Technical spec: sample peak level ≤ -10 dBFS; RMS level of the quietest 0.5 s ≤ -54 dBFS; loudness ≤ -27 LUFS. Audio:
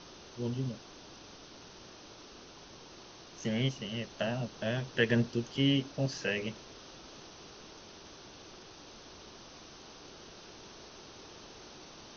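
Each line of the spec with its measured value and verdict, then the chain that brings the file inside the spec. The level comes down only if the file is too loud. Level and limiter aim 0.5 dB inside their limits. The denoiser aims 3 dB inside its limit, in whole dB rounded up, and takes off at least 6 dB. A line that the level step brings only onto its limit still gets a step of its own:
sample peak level -14.5 dBFS: pass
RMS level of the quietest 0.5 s -52 dBFS: fail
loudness -33.5 LUFS: pass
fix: noise reduction 6 dB, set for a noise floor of -52 dBFS

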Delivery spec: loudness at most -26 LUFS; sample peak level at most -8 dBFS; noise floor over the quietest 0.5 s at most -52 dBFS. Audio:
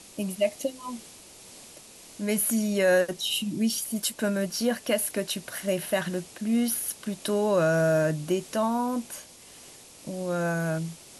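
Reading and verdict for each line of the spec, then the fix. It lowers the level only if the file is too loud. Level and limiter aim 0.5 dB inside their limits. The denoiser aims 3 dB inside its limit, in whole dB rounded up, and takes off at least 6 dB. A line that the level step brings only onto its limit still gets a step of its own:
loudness -27.0 LUFS: pass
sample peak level -12.5 dBFS: pass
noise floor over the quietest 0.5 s -49 dBFS: fail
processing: noise reduction 6 dB, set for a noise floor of -49 dBFS

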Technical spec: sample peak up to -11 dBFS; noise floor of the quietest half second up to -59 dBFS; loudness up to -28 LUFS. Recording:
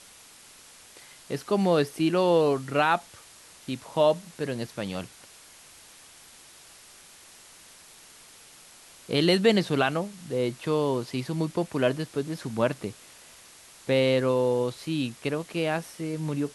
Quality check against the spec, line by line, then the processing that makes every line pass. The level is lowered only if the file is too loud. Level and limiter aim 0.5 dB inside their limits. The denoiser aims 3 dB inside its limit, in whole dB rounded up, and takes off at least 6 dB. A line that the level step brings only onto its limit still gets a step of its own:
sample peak -9.0 dBFS: fail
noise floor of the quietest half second -51 dBFS: fail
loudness -26.5 LUFS: fail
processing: noise reduction 9 dB, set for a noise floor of -51 dBFS; trim -2 dB; peak limiter -11.5 dBFS

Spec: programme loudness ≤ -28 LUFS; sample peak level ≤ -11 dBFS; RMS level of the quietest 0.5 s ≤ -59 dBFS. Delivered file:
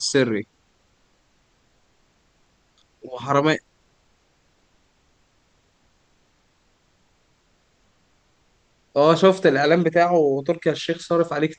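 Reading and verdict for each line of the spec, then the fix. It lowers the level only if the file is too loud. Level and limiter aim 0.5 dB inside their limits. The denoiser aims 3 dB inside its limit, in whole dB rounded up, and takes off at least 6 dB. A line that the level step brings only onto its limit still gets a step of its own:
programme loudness -20.0 LUFS: fail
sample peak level -3.0 dBFS: fail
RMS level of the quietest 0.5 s -63 dBFS: pass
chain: trim -8.5 dB

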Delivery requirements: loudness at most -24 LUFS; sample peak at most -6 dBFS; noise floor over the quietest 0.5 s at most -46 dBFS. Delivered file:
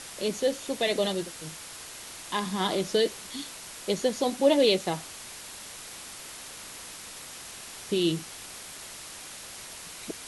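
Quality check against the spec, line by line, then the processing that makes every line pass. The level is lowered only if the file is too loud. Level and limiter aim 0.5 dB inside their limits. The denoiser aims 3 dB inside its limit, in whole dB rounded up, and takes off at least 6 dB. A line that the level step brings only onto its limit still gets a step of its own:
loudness -30.5 LUFS: pass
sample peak -9.5 dBFS: pass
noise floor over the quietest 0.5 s -43 dBFS: fail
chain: noise reduction 6 dB, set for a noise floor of -43 dBFS

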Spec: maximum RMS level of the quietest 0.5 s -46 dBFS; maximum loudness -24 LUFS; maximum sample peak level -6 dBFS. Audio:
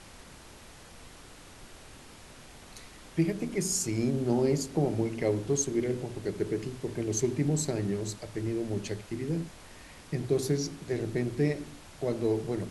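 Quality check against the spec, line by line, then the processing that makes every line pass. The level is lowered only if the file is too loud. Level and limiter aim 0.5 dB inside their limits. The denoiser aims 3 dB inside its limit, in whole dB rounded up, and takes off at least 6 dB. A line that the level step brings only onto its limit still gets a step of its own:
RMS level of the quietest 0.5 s -50 dBFS: pass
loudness -31.0 LUFS: pass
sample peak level -14.0 dBFS: pass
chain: none needed

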